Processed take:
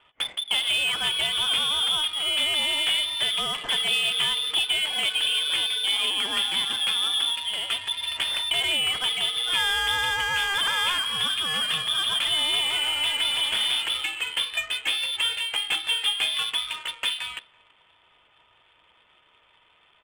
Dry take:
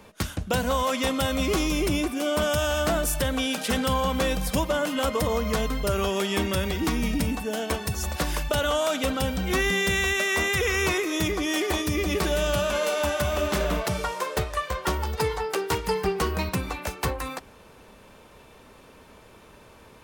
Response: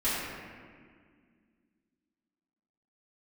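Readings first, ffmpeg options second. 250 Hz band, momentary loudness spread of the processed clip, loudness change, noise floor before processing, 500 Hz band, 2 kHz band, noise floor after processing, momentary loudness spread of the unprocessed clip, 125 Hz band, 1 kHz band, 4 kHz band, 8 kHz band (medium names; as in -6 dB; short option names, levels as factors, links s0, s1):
-20.5 dB, 5 LU, +3.0 dB, -51 dBFS, -17.0 dB, +1.5 dB, -61 dBFS, 6 LU, -20.0 dB, -4.5 dB, +12.0 dB, -1.0 dB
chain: -af "lowpass=f=3100:t=q:w=0.5098,lowpass=f=3100:t=q:w=0.6013,lowpass=f=3100:t=q:w=0.9,lowpass=f=3100:t=q:w=2.563,afreqshift=-3600,aecho=1:1:333:0.0891,adynamicsmooth=sensitivity=7:basefreq=1300"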